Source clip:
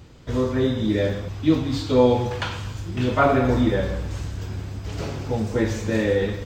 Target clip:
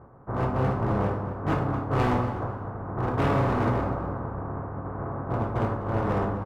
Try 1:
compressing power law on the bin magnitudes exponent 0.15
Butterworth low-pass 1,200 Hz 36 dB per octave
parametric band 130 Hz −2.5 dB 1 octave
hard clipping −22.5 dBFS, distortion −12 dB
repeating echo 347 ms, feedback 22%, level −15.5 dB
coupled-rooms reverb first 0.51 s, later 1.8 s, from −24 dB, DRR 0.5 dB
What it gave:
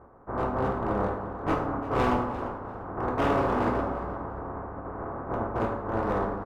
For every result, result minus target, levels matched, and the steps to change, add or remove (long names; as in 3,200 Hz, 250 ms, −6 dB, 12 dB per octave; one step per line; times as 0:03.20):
echo 98 ms late; 125 Hz band −6.5 dB
change: repeating echo 249 ms, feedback 22%, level −15.5 dB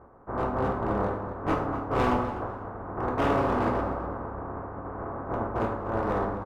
125 Hz band −6.0 dB
change: parametric band 130 Hz +9 dB 1 octave